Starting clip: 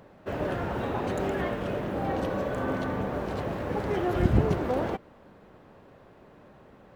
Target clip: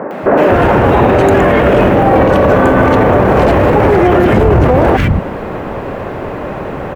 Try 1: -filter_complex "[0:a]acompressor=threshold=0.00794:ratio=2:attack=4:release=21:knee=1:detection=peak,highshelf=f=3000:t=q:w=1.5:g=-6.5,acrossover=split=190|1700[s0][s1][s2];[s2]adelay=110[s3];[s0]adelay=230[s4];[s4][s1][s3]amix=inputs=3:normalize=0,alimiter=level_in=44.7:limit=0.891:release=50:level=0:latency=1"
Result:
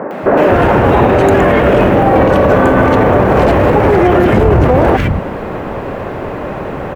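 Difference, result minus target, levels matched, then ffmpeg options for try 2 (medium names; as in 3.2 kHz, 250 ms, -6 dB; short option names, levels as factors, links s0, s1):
compression: peak gain reduction +3.5 dB
-filter_complex "[0:a]acompressor=threshold=0.0168:ratio=2:attack=4:release=21:knee=1:detection=peak,highshelf=f=3000:t=q:w=1.5:g=-6.5,acrossover=split=190|1700[s0][s1][s2];[s2]adelay=110[s3];[s0]adelay=230[s4];[s4][s1][s3]amix=inputs=3:normalize=0,alimiter=level_in=44.7:limit=0.891:release=50:level=0:latency=1"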